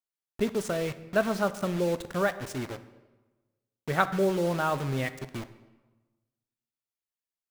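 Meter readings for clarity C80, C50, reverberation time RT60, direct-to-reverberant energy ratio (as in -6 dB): 16.0 dB, 14.5 dB, 1.3 s, 11.5 dB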